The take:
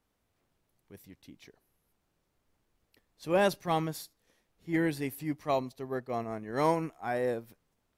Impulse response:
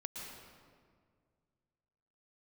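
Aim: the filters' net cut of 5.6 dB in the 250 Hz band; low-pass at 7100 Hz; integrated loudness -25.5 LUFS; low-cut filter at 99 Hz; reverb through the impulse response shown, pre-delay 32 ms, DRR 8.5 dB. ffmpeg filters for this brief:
-filter_complex "[0:a]highpass=99,lowpass=7.1k,equalizer=f=250:t=o:g=-8.5,asplit=2[a][b];[1:a]atrim=start_sample=2205,adelay=32[c];[b][c]afir=irnorm=-1:irlink=0,volume=-7.5dB[d];[a][d]amix=inputs=2:normalize=0,volume=8dB"

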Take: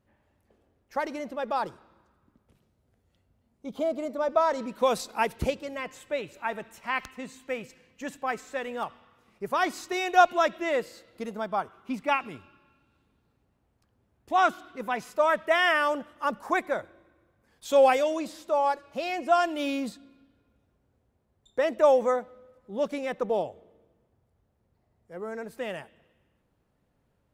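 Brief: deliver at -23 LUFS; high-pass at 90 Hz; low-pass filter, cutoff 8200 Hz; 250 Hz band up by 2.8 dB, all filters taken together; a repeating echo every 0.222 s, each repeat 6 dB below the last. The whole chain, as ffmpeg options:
-af "highpass=90,lowpass=8.2k,equalizer=f=250:t=o:g=3.5,aecho=1:1:222|444|666|888|1110|1332:0.501|0.251|0.125|0.0626|0.0313|0.0157,volume=3.5dB"

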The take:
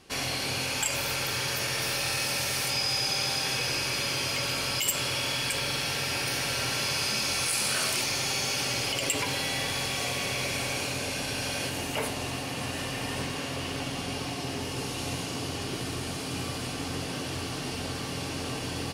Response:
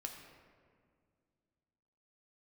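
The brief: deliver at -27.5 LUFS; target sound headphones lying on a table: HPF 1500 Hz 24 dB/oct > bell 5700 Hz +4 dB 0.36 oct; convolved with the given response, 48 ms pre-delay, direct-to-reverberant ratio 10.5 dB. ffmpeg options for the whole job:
-filter_complex "[0:a]asplit=2[a][b];[1:a]atrim=start_sample=2205,adelay=48[c];[b][c]afir=irnorm=-1:irlink=0,volume=-8dB[d];[a][d]amix=inputs=2:normalize=0,highpass=f=1.5k:w=0.5412,highpass=f=1.5k:w=1.3066,equalizer=f=5.7k:t=o:w=0.36:g=4,volume=0.5dB"

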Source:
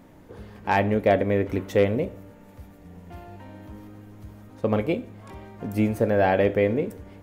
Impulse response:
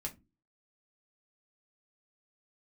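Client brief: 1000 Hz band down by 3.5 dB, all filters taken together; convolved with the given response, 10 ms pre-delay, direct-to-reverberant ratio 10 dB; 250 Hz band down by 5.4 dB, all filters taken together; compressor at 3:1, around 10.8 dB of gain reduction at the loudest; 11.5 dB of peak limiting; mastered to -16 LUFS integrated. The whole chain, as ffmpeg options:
-filter_complex "[0:a]equalizer=f=250:t=o:g=-7,equalizer=f=1k:t=o:g=-4.5,acompressor=threshold=-32dB:ratio=3,alimiter=level_in=4dB:limit=-24dB:level=0:latency=1,volume=-4dB,asplit=2[a][b];[1:a]atrim=start_sample=2205,adelay=10[c];[b][c]afir=irnorm=-1:irlink=0,volume=-9dB[d];[a][d]amix=inputs=2:normalize=0,volume=23dB"

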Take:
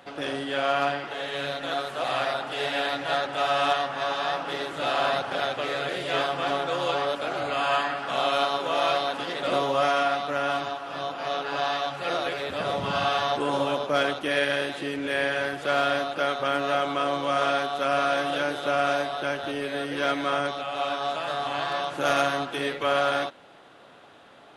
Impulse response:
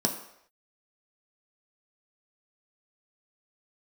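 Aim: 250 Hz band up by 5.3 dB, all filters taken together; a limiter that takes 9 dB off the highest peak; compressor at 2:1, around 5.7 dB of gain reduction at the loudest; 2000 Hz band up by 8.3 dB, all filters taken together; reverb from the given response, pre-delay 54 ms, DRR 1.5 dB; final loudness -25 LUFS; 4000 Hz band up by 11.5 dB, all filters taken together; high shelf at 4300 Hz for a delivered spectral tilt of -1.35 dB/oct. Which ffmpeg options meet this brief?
-filter_complex "[0:a]equalizer=f=250:t=o:g=6,equalizer=f=2k:t=o:g=7.5,equalizer=f=4k:t=o:g=8,highshelf=f=4.3k:g=7.5,acompressor=threshold=-24dB:ratio=2,alimiter=limit=-17dB:level=0:latency=1,asplit=2[a][b];[1:a]atrim=start_sample=2205,adelay=54[c];[b][c]afir=irnorm=-1:irlink=0,volume=-10dB[d];[a][d]amix=inputs=2:normalize=0,volume=-1dB"

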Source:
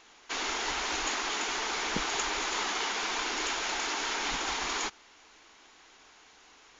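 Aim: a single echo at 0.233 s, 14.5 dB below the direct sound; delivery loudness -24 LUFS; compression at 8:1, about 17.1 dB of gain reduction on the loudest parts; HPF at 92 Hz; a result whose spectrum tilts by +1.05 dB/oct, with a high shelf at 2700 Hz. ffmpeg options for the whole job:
-af "highpass=92,highshelf=f=2.7k:g=7,acompressor=threshold=-43dB:ratio=8,aecho=1:1:233:0.188,volume=20dB"

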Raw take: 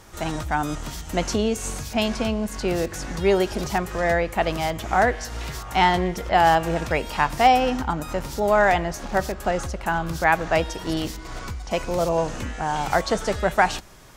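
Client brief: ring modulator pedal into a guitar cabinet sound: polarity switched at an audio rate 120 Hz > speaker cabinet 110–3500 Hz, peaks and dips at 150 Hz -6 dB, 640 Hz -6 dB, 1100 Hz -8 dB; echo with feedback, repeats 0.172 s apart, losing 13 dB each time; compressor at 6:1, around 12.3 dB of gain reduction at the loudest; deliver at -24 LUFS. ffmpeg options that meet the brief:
-af "acompressor=threshold=-25dB:ratio=6,aecho=1:1:172|344|516:0.224|0.0493|0.0108,aeval=exprs='val(0)*sgn(sin(2*PI*120*n/s))':c=same,highpass=110,equalizer=f=150:t=q:w=4:g=-6,equalizer=f=640:t=q:w=4:g=-6,equalizer=f=1.1k:t=q:w=4:g=-8,lowpass=f=3.5k:w=0.5412,lowpass=f=3.5k:w=1.3066,volume=8.5dB"

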